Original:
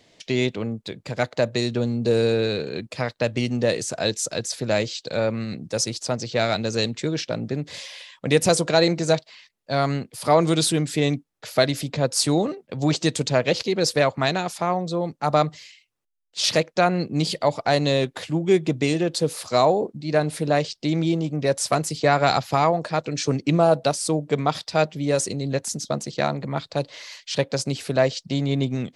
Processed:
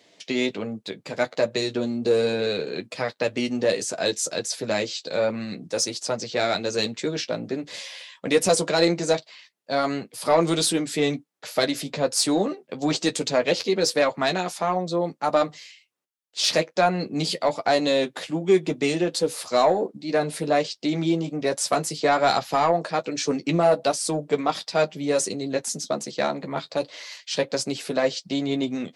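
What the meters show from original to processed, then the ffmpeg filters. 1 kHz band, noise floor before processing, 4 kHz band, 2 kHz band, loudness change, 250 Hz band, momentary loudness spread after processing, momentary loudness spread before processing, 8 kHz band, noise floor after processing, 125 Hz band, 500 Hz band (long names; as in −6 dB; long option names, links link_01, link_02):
−1.0 dB, −64 dBFS, −0.5 dB, −1.0 dB, −1.0 dB, −1.5 dB, 8 LU, 8 LU, 0.0 dB, −61 dBFS, −8.5 dB, −0.5 dB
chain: -af "highpass=210,acontrast=80,flanger=delay=10:depth=1.7:regen=-30:speed=1.3:shape=sinusoidal,volume=-3dB"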